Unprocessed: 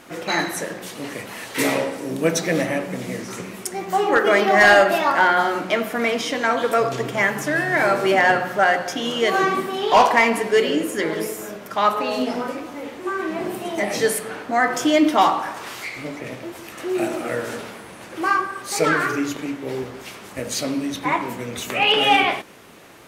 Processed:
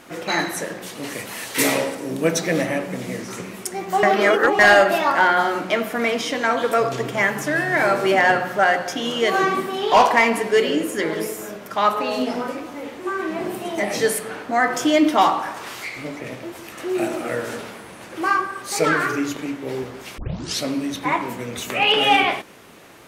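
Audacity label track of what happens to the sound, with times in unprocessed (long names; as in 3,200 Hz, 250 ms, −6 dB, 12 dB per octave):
1.030000	1.950000	high-shelf EQ 4,000 Hz +7.5 dB
4.030000	4.590000	reverse
20.180000	20.180000	tape start 0.44 s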